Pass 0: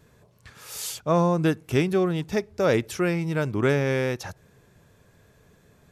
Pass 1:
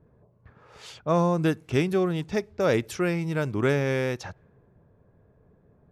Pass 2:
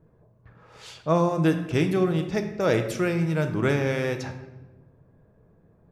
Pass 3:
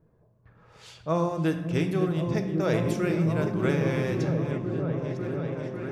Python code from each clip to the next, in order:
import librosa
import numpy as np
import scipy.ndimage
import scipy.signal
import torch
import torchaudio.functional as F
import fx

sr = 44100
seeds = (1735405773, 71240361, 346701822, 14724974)

y1 = fx.env_lowpass(x, sr, base_hz=800.0, full_db=-22.5)
y1 = y1 * 10.0 ** (-1.5 / 20.0)
y2 = fx.room_shoebox(y1, sr, seeds[0], volume_m3=520.0, walls='mixed', distance_m=0.66)
y3 = fx.reverse_delay(y2, sr, ms=586, wet_db=-12)
y3 = fx.echo_opening(y3, sr, ms=548, hz=200, octaves=1, feedback_pct=70, wet_db=0)
y3 = y3 * 10.0 ** (-4.5 / 20.0)